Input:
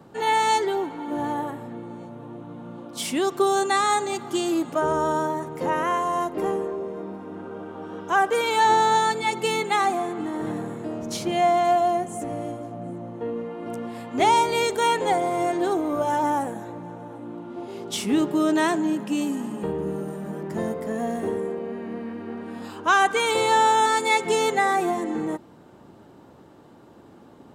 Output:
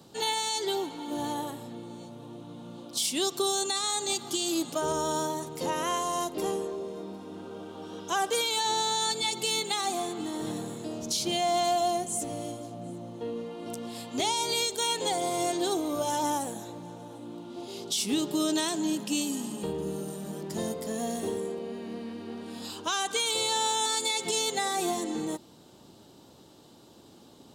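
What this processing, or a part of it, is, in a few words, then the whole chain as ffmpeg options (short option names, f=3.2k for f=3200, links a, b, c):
over-bright horn tweeter: -af "highshelf=f=2.7k:t=q:w=1.5:g=12.5,alimiter=limit=-13.5dB:level=0:latency=1:release=127,volume=-5dB"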